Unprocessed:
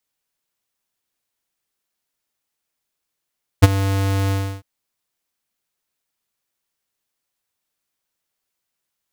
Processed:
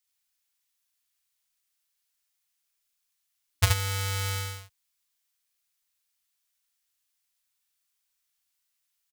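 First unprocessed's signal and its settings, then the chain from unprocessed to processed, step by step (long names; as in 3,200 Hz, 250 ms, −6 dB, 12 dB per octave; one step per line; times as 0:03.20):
note with an ADSR envelope square 97.6 Hz, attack 18 ms, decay 28 ms, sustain −15 dB, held 0.69 s, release 312 ms −4 dBFS
guitar amp tone stack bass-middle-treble 10-0-10
ambience of single reflections 37 ms −8 dB, 74 ms −3 dB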